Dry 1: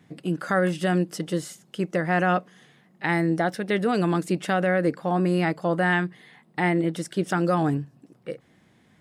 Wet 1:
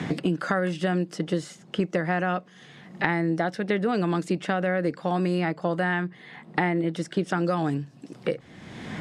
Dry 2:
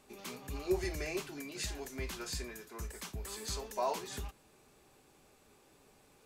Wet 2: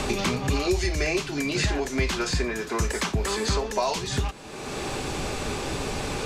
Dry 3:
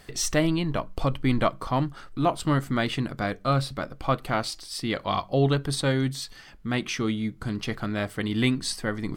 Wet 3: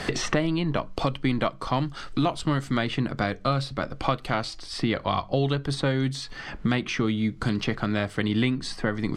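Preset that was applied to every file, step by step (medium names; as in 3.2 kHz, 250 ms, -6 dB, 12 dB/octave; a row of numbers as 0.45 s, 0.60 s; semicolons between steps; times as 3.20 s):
low-pass 6.6 kHz 12 dB/octave; three bands compressed up and down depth 100%; normalise loudness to -27 LUFS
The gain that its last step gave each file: -2.5 dB, +15.5 dB, -0.5 dB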